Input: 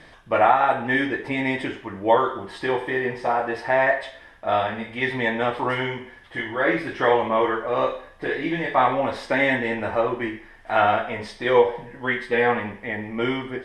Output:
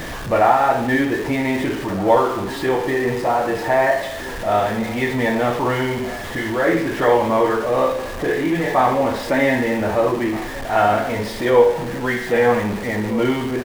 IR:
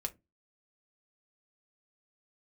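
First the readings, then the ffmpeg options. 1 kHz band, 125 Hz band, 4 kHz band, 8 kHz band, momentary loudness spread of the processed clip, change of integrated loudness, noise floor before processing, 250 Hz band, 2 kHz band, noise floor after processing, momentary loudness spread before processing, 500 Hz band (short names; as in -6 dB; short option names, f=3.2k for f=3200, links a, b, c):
+3.0 dB, +8.0 dB, +3.0 dB, n/a, 7 LU, +4.0 dB, -48 dBFS, +7.0 dB, +1.0 dB, -29 dBFS, 10 LU, +5.0 dB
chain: -filter_complex "[0:a]aeval=exprs='val(0)+0.5*0.0562*sgn(val(0))':c=same,tiltshelf=f=1.1k:g=4,asplit=2[a][b];[b]adelay=1574,volume=-15dB,highshelf=f=4k:g=-35.4[c];[a][c]amix=inputs=2:normalize=0,asplit=2[d][e];[1:a]atrim=start_sample=2205,adelay=58[f];[e][f]afir=irnorm=-1:irlink=0,volume=-11.5dB[g];[d][g]amix=inputs=2:normalize=0"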